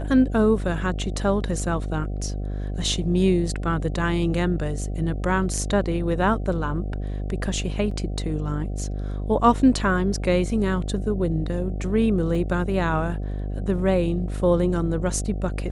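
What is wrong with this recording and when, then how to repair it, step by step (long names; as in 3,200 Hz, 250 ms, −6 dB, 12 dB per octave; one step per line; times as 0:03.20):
mains buzz 50 Hz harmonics 15 −28 dBFS
0:07.91: drop-out 3.7 ms
0:12.35: drop-out 2.2 ms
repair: hum removal 50 Hz, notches 15
repair the gap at 0:07.91, 3.7 ms
repair the gap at 0:12.35, 2.2 ms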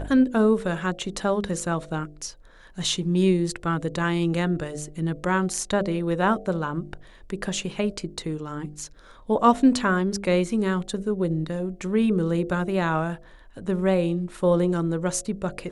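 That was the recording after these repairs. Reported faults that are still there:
none of them is left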